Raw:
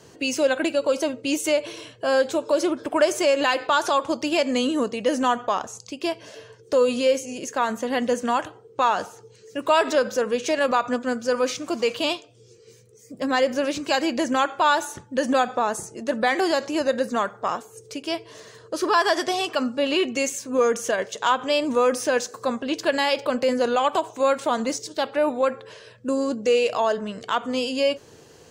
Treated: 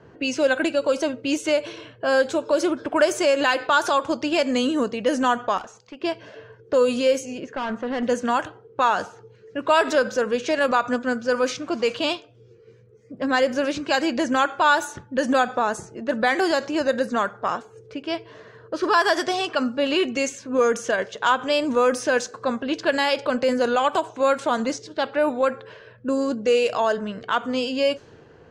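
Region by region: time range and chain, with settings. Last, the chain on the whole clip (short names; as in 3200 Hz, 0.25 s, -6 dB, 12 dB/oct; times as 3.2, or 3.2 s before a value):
5.58–6.01 HPF 430 Hz 6 dB/oct + hard clip -32.5 dBFS
7.4–8.03 LPF 2700 Hz 6 dB/oct + hard clip -24 dBFS
whole clip: bell 1500 Hz +5 dB 0.31 oct; low-pass opened by the level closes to 1800 Hz, open at -16 dBFS; low shelf 170 Hz +4 dB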